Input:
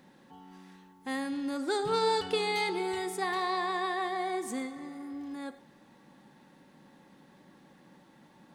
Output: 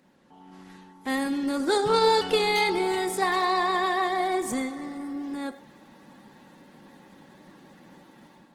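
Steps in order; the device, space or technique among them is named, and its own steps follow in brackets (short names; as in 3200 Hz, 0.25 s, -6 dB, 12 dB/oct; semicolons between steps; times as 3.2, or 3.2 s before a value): video call (HPF 130 Hz 12 dB/oct; AGC gain up to 9 dB; gain -2 dB; Opus 16 kbps 48000 Hz)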